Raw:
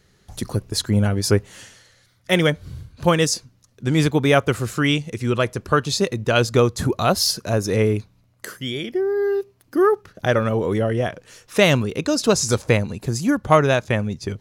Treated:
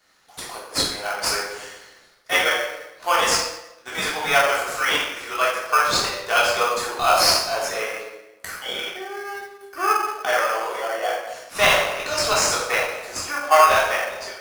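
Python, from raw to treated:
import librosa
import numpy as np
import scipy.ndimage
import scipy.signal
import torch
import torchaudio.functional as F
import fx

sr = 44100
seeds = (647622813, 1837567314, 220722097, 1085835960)

p1 = scipy.signal.sosfilt(scipy.signal.butter(4, 730.0, 'highpass', fs=sr, output='sos'), x)
p2 = fx.room_shoebox(p1, sr, seeds[0], volume_m3=500.0, walls='mixed', distance_m=3.4)
p3 = fx.sample_hold(p2, sr, seeds[1], rate_hz=3800.0, jitter_pct=0)
p4 = p2 + (p3 * 10.0 ** (-5.0 / 20.0))
y = p4 * 10.0 ** (-5.0 / 20.0)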